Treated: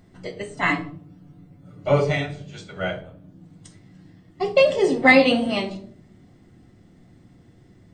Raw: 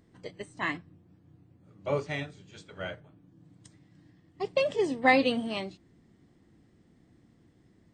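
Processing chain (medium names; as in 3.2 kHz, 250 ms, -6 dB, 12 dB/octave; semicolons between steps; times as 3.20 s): 0.48–2.12 s: comb 6.9 ms, depth 69%; reverberation RT60 0.55 s, pre-delay 4 ms, DRR 2 dB; trim +6 dB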